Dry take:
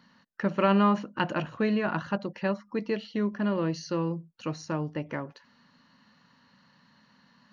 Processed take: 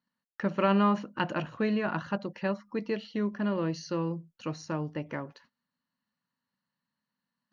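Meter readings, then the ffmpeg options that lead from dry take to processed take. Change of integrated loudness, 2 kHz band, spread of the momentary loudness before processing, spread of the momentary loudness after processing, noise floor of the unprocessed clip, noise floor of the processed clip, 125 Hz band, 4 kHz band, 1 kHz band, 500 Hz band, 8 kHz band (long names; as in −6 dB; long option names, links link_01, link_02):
−2.0 dB, −2.0 dB, 13 LU, 13 LU, −64 dBFS, below −85 dBFS, −2.0 dB, −2.0 dB, −2.0 dB, −2.0 dB, can't be measured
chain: -af "agate=range=-24dB:threshold=-56dB:ratio=16:detection=peak,volume=-2dB"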